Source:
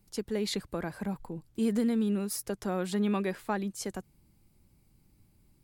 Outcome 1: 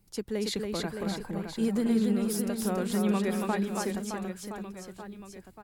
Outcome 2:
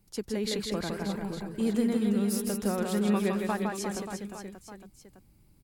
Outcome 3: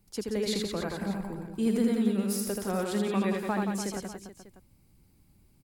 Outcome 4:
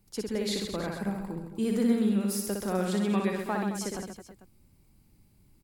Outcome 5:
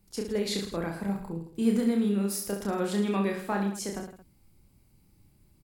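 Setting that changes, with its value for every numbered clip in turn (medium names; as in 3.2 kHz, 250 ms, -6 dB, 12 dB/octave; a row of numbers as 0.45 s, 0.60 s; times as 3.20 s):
reverse bouncing-ball echo, first gap: 280 ms, 160 ms, 80 ms, 60 ms, 30 ms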